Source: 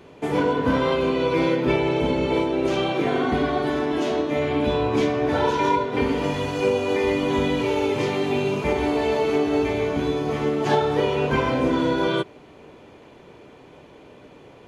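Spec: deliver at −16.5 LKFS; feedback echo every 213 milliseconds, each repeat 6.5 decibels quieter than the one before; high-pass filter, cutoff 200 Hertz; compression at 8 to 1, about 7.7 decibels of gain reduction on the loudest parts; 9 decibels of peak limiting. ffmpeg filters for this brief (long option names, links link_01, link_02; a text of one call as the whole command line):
ffmpeg -i in.wav -af "highpass=200,acompressor=threshold=-25dB:ratio=8,alimiter=level_in=1dB:limit=-24dB:level=0:latency=1,volume=-1dB,aecho=1:1:213|426|639|852|1065|1278:0.473|0.222|0.105|0.0491|0.0231|0.0109,volume=16dB" out.wav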